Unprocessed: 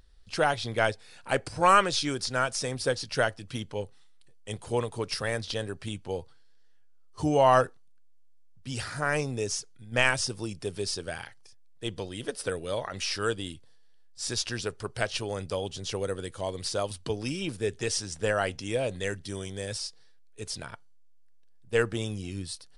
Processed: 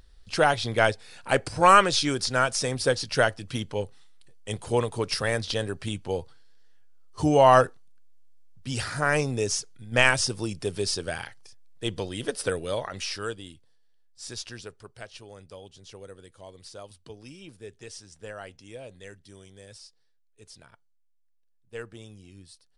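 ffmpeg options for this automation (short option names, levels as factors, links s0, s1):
-af "volume=1.58,afade=t=out:st=12.48:d=0.92:silence=0.298538,afade=t=out:st=14.43:d=0.53:silence=0.473151"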